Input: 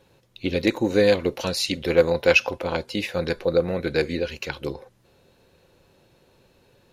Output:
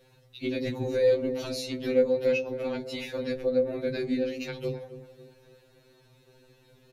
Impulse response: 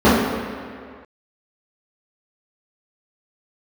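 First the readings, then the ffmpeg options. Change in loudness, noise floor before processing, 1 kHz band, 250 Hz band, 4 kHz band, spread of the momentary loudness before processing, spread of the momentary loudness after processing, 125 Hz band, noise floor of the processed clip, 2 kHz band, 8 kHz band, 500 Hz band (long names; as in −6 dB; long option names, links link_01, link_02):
−5.5 dB, −61 dBFS, −13.0 dB, −5.0 dB, −10.5 dB, 12 LU, 11 LU, −7.5 dB, −61 dBFS, −12.5 dB, below −10 dB, −4.0 dB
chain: -filter_complex "[0:a]bandreject=frequency=130.6:width_type=h:width=4,bandreject=frequency=261.2:width_type=h:width=4,bandreject=frequency=391.8:width_type=h:width=4,bandreject=frequency=522.4:width_type=h:width=4,bandreject=frequency=653:width_type=h:width=4,bandreject=frequency=783.6:width_type=h:width=4,bandreject=frequency=914.2:width_type=h:width=4,acrossover=split=370[link_01][link_02];[link_02]acompressor=threshold=-35dB:ratio=4[link_03];[link_01][link_03]amix=inputs=2:normalize=0,asplit=2[link_04][link_05];[link_05]adelay=16,volume=-11.5dB[link_06];[link_04][link_06]amix=inputs=2:normalize=0,asplit=2[link_07][link_08];[link_08]adelay=273,lowpass=frequency=1200:poles=1,volume=-12dB,asplit=2[link_09][link_10];[link_10]adelay=273,lowpass=frequency=1200:poles=1,volume=0.44,asplit=2[link_11][link_12];[link_12]adelay=273,lowpass=frequency=1200:poles=1,volume=0.44,asplit=2[link_13][link_14];[link_14]adelay=273,lowpass=frequency=1200:poles=1,volume=0.44[link_15];[link_09][link_11][link_13][link_15]amix=inputs=4:normalize=0[link_16];[link_07][link_16]amix=inputs=2:normalize=0,afftfilt=real='re*2.45*eq(mod(b,6),0)':imag='im*2.45*eq(mod(b,6),0)':win_size=2048:overlap=0.75,volume=1dB"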